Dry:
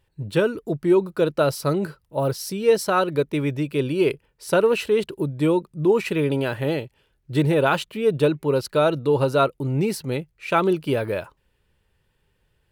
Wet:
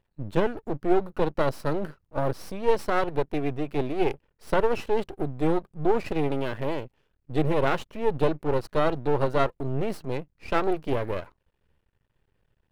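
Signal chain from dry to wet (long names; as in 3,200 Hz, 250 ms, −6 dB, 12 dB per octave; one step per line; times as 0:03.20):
half-wave rectification
high-shelf EQ 2,800 Hz −11 dB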